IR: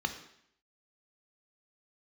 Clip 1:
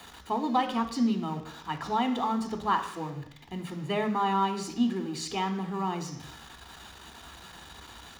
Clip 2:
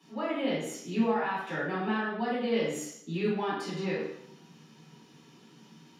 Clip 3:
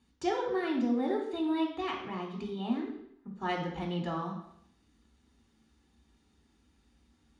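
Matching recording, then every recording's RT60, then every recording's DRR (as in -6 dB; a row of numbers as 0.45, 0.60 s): 1; 0.70, 0.70, 0.70 s; 6.0, -9.0, 0.0 dB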